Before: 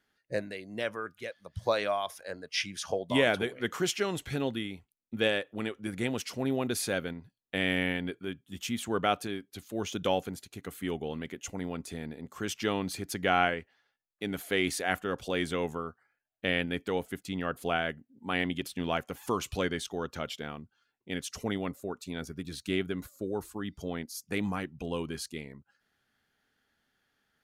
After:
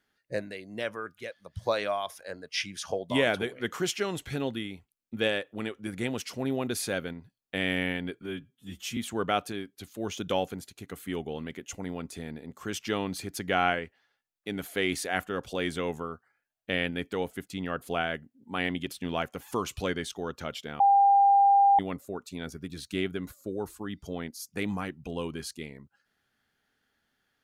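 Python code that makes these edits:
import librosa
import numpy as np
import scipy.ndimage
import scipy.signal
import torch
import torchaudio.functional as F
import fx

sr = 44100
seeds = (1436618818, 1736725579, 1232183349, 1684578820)

y = fx.edit(x, sr, fx.stretch_span(start_s=8.22, length_s=0.5, factor=1.5),
    fx.bleep(start_s=20.55, length_s=0.99, hz=798.0, db=-16.5), tone=tone)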